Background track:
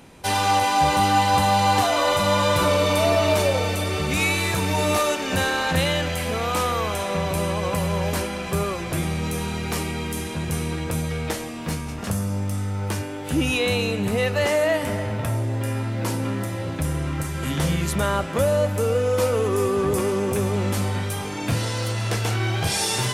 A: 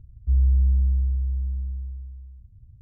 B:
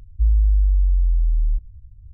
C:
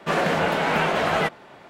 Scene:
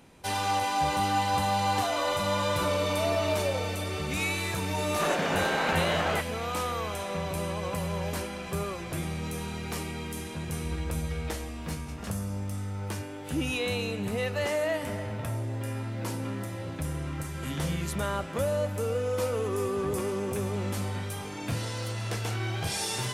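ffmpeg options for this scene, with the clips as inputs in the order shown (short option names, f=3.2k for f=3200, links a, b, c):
-filter_complex "[0:a]volume=-8dB[a];[3:a]atrim=end=1.69,asetpts=PTS-STARTPTS,volume=-7dB,afade=t=in:d=0.004:c=hsin,afade=t=out:st=1.686:d=0.004:c=hsin,adelay=217413S[b];[1:a]atrim=end=2.81,asetpts=PTS-STARTPTS,volume=-17dB,afade=t=in:d=0.004:c=hsin,afade=t=out:st=2.806:d=0.004:c=hsin,adelay=10370[c];[a][b][c]amix=inputs=3:normalize=0"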